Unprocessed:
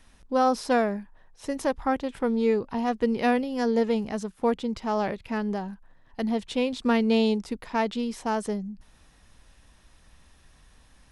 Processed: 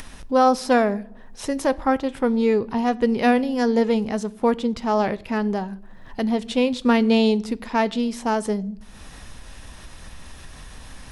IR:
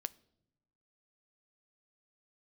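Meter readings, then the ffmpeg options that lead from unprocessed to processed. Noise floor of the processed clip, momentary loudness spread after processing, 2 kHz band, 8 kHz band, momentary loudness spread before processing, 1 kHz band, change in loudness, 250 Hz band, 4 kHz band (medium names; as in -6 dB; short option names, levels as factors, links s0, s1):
-43 dBFS, 11 LU, +5.0 dB, +6.0 dB, 10 LU, +5.0 dB, +5.0 dB, +5.5 dB, +5.0 dB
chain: -filter_complex "[0:a]acompressor=mode=upward:threshold=0.0224:ratio=2.5[s0];[1:a]atrim=start_sample=2205[s1];[s0][s1]afir=irnorm=-1:irlink=0,volume=2.24"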